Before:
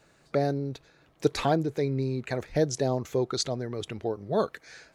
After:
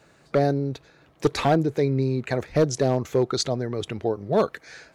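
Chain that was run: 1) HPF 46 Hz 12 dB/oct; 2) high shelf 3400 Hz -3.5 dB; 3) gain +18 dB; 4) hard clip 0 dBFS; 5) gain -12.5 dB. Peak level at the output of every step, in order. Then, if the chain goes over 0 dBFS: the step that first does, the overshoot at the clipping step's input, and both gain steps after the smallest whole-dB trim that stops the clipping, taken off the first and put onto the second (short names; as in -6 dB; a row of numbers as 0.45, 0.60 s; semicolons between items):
-10.0, -10.0, +8.0, 0.0, -12.5 dBFS; step 3, 8.0 dB; step 3 +10 dB, step 5 -4.5 dB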